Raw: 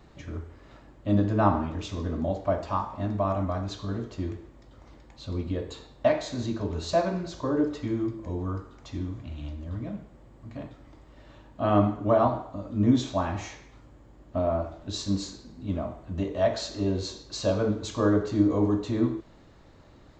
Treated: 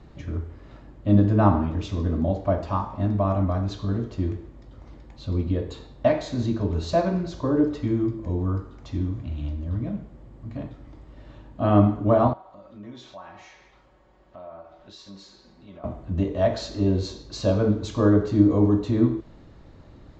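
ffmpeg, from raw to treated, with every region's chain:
-filter_complex "[0:a]asettb=1/sr,asplit=3[s0][s1][s2];[s0]atrim=end=12.334[s3];[s1]atrim=start=12.33:end=15.84,asetpts=PTS-STARTPTS,afade=t=in:d=0.004:c=qsin,afade=t=out:st=3.506:d=0.004:c=qsin,acrossover=split=500 6300:gain=0.158 1 0.251[s4][s5][s6];[s4][s5][s6]amix=inputs=3:normalize=0,aecho=1:1:5.4:0.48,atrim=end_sample=154791,acompressor=threshold=0.00282:ratio=2:attack=3.2:release=140:knee=1:detection=peak[s7];[s2]atrim=start=15.836[s8];[s3][s7]acrossfade=d=0.004:c1=hsin:c2=qsin[s9];[s9][s8]acrossfade=d=0.004:c1=qsin:c2=hsin,lowpass=6700,lowshelf=f=380:g=7.5"

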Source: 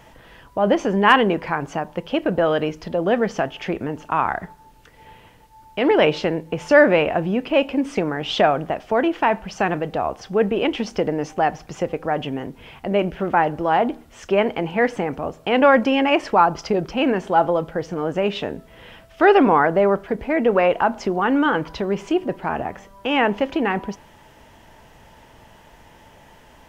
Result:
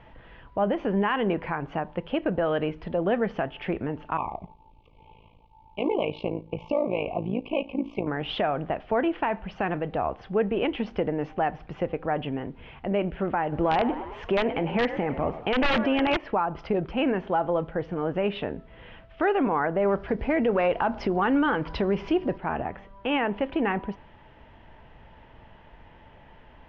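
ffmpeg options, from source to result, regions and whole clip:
-filter_complex "[0:a]asettb=1/sr,asplit=3[s0][s1][s2];[s0]atrim=end=4.174[s3];[s1]atrim=start=4.17:end=8.07,asetpts=PTS-STARTPTS,afade=t=in:d=0.004:c=qsin,afade=t=out:st=3.896:d=0.004:c=qsin,asuperstop=centerf=1600:order=20:qfactor=1.6,tremolo=f=55:d=0.824[s4];[s2]atrim=start=8.066[s5];[s3][s4]acrossfade=d=0.004:c1=hsin:c2=qsin[s6];[s6][s5]acrossfade=d=0.004:c1=qsin:c2=hsin,asettb=1/sr,asplit=3[s7][s8][s9];[s7]atrim=end=13.524[s10];[s8]atrim=start=13.52:end=16.17,asetpts=PTS-STARTPTS,afade=t=in:d=0.004:c=qsin,afade=t=out:st=2.646:d=0.004:c=qsin,acontrast=32,asplit=6[s11][s12][s13][s14][s15][s16];[s12]adelay=106,afreqshift=56,volume=0.178[s17];[s13]adelay=212,afreqshift=112,volume=0.0944[s18];[s14]adelay=318,afreqshift=168,volume=0.0501[s19];[s15]adelay=424,afreqshift=224,volume=0.0266[s20];[s16]adelay=530,afreqshift=280,volume=0.014[s21];[s11][s17][s18][s19][s20][s21]amix=inputs=6:normalize=0,atrim=end_sample=116865,aeval=exprs='(mod(1.68*val(0)+1,2)-1)/1.68':c=same[s22];[s9]atrim=start=16.166[s23];[s10][s22]acrossfade=d=0.004:c1=hsin:c2=qsin[s24];[s24][s23]acrossfade=d=0.004:c1=qsin:c2=hsin,asettb=1/sr,asplit=3[s25][s26][s27];[s25]atrim=end=19.854[s28];[s26]atrim=start=19.85:end=22.38,asetpts=PTS-STARTPTS,afade=t=in:d=0.004:c=qsin,afade=t=out:st=2.526:d=0.004:c=qsin,equalizer=f=5200:t=o:w=0.55:g=12,acontrast=28,aeval=exprs='val(0)+0.00501*(sin(2*PI*60*n/s)+sin(2*PI*2*60*n/s)/2+sin(2*PI*3*60*n/s)/3+sin(2*PI*4*60*n/s)/4+sin(2*PI*5*60*n/s)/5)':c=same[s29];[s27]atrim=start=22.376[s30];[s28][s29]acrossfade=d=0.004:c1=hsin:c2=qsin[s31];[s31][s30]acrossfade=d=0.004:c1=qsin:c2=hsin,lowpass=f=3200:w=0.5412,lowpass=f=3200:w=1.3066,lowshelf=f=89:g=7.5,alimiter=limit=0.282:level=0:latency=1:release=195,volume=0.596"

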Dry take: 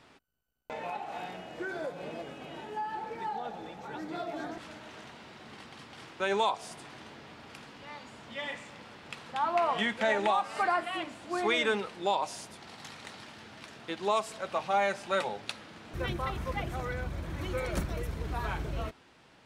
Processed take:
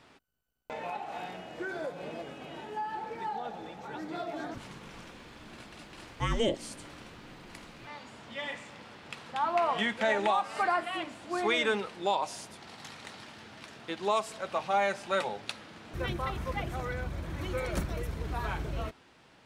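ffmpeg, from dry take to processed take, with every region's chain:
-filter_complex "[0:a]asettb=1/sr,asplit=3[s0][s1][s2];[s0]atrim=end=4.544[s3];[s1]atrim=start=4.54:end=7.87,asetpts=PTS-STARTPTS,afade=t=in:d=0.004:c=qsin,afade=t=out:st=3.326:d=0.004:c=qsin,highshelf=f=10000:g=9,afreqshift=-440[s4];[s2]atrim=start=7.866[s5];[s3][s4]acrossfade=d=0.004:c1=hsin:c2=qsin[s6];[s6][s5]acrossfade=d=0.004:c1=qsin:c2=hsin"

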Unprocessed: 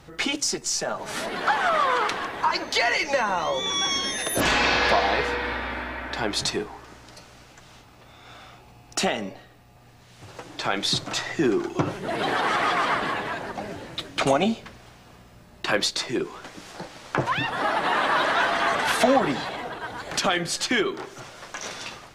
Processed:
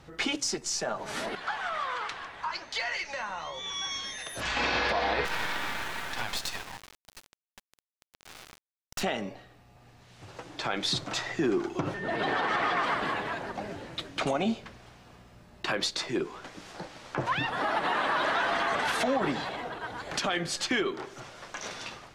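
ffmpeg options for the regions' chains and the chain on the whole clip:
-filter_complex "[0:a]asettb=1/sr,asplit=3[s0][s1][s2];[s0]atrim=end=1.354[s3];[s1]atrim=start=1.35:end=4.57,asetpts=PTS-STARTPTS,afade=t=in:d=0.004:c=qsin,afade=t=out:st=3.216:d=0.004:c=qsin,lowpass=10000,equalizer=f=320:w=0.58:g=-11,flanger=delay=6.2:depth=9.1:regen=-73:speed=1.4:shape=sinusoidal[s4];[s2]atrim=start=4.566[s5];[s3][s4]acrossfade=d=0.004:c1=hsin:c2=qsin[s6];[s6][s5]acrossfade=d=0.004:c1=qsin:c2=hsin,asettb=1/sr,asplit=3[s7][s8][s9];[s7]atrim=end=5.254[s10];[s8]atrim=start=5.25:end=9.03,asetpts=PTS-STARTPTS,afade=t=in:d=0.004:c=qsin,afade=t=out:st=3.776:d=0.004:c=qsin,highpass=f=760:w=0.5412,highpass=f=760:w=1.3066,acontrast=71,acrusher=bits=3:dc=4:mix=0:aa=0.000001[s11];[s9]atrim=start=9.026[s12];[s10][s11]acrossfade=d=0.004:c1=hsin:c2=qsin[s13];[s13][s12]acrossfade=d=0.004:c1=qsin:c2=hsin,asettb=1/sr,asplit=3[s14][s15][s16];[s14]atrim=end=11.944[s17];[s15]atrim=start=11.94:end=12.84,asetpts=PTS-STARTPTS,afade=t=in:d=0.004:c=qsin,afade=t=out:st=0.896:d=0.004:c=qsin,equalizer=f=13000:t=o:w=0.92:g=-15,aeval=exprs='val(0)+0.0224*sin(2*PI*1800*n/s)':c=same[s18];[s16]atrim=start=12.836[s19];[s17][s18]acrossfade=d=0.004:c1=hsin:c2=qsin[s20];[s20][s19]acrossfade=d=0.004:c1=qsin:c2=hsin,highshelf=f=9600:g=-8,alimiter=limit=0.178:level=0:latency=1:release=62,volume=0.668"

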